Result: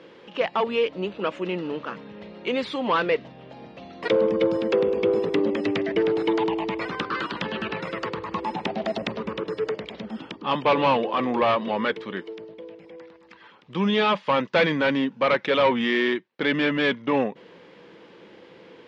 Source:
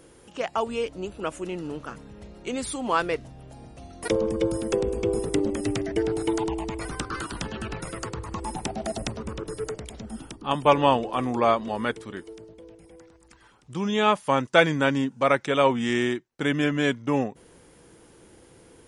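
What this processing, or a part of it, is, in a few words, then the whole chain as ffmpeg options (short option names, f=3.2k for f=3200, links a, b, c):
overdrive pedal into a guitar cabinet: -filter_complex "[0:a]asplit=2[a][b];[b]highpass=f=720:p=1,volume=23dB,asoftclip=type=tanh:threshold=-3dB[c];[a][c]amix=inputs=2:normalize=0,lowpass=f=4.6k:p=1,volume=-6dB,highpass=100,equalizer=f=190:t=q:w=4:g=8,equalizer=f=510:t=q:w=4:g=3,equalizer=f=740:t=q:w=4:g=-5,equalizer=f=1.4k:t=q:w=4:g=-5,lowpass=f=4k:w=0.5412,lowpass=f=4k:w=1.3066,volume=-7dB"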